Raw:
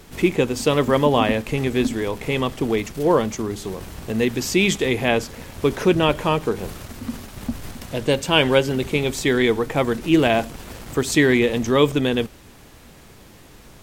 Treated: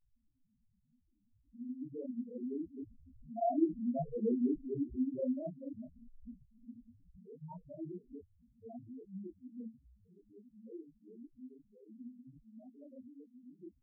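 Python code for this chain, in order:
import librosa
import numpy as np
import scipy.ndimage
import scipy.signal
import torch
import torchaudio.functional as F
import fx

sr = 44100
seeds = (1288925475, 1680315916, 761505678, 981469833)

p1 = np.flip(x).copy()
p2 = fx.doppler_pass(p1, sr, speed_mps=5, closest_m=2.8, pass_at_s=4.29)
p3 = fx.low_shelf(p2, sr, hz=120.0, db=3.0)
p4 = np.clip(p3, -10.0 ** (-31.0 / 20.0), 10.0 ** (-31.0 / 20.0))
p5 = p3 + (p4 * librosa.db_to_amplitude(-3.5))
p6 = scipy.signal.sosfilt(scipy.signal.cheby1(6, 6, 960.0, 'lowpass', fs=sr, output='sos'), p5)
p7 = fx.spec_topn(p6, sr, count=1)
y = fx.detune_double(p7, sr, cents=49)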